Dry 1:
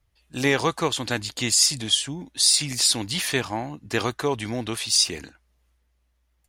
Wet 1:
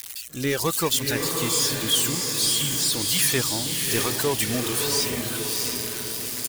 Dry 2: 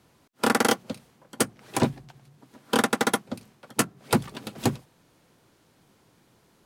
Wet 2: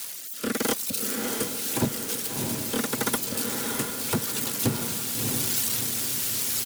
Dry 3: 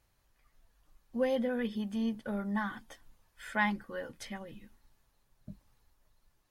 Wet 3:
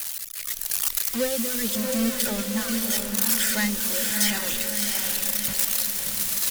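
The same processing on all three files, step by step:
spike at every zero crossing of −14 dBFS
low-shelf EQ 73 Hz +7 dB
single-tap delay 326 ms −20.5 dB
dynamic equaliser 730 Hz, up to −6 dB, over −46 dBFS, Q 5.4
automatic gain control gain up to 11.5 dB
reverb reduction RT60 1.6 s
soft clipping −9.5 dBFS
rotating-speaker cabinet horn 0.85 Hz
feedback delay with all-pass diffusion 665 ms, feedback 53%, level −3 dB
normalise the peak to −9 dBFS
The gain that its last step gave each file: −4.0, −6.0, −2.0 decibels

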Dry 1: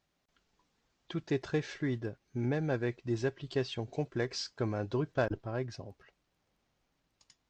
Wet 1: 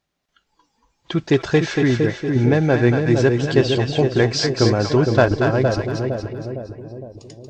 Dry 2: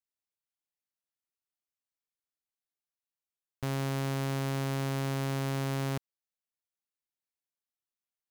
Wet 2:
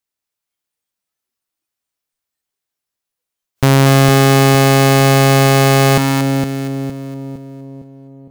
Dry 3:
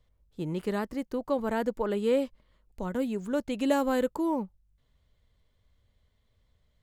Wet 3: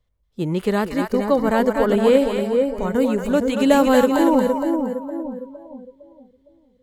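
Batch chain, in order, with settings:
echo with a time of its own for lows and highs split 640 Hz, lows 460 ms, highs 233 ms, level −4 dB
noise reduction from a noise print of the clip's start 13 dB
normalise the peak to −1.5 dBFS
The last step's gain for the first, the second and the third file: +15.5, +22.5, +10.5 decibels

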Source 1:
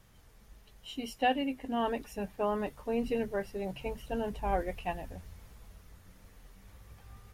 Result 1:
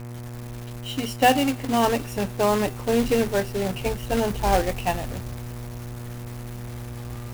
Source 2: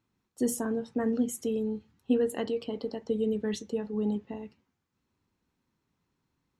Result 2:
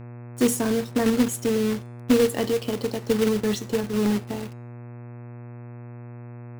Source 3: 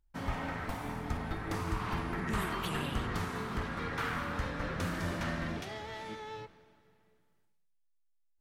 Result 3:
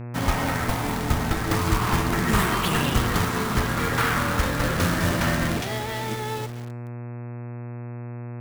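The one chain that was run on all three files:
log-companded quantiser 4 bits
hum with harmonics 120 Hz, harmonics 22, −46 dBFS −8 dB per octave
hum removal 385.5 Hz, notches 26
loudness normalisation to −24 LKFS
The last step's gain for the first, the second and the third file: +10.0, +7.0, +12.0 decibels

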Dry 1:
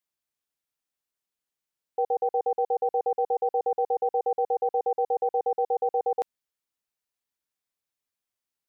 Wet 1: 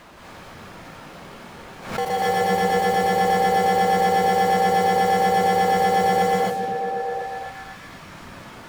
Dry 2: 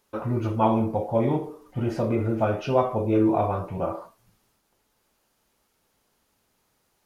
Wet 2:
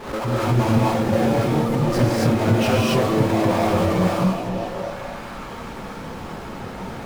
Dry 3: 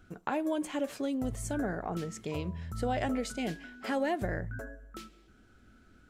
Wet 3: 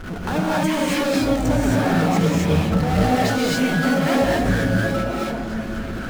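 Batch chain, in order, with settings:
reverb reduction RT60 1.5 s
low-pass that shuts in the quiet parts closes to 1,400 Hz, open at −25.5 dBFS
downward compressor, threshold −33 dBFS
power curve on the samples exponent 0.35
on a send: echo through a band-pass that steps 248 ms, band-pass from 170 Hz, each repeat 0.7 octaves, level 0 dB
on the sum: reverb whose tail is shaped and stops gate 300 ms rising, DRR −5.5 dB
background raised ahead of every attack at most 95 dB per second
loudness normalisation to −20 LKFS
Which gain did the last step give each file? +3.5, +2.0, +1.0 decibels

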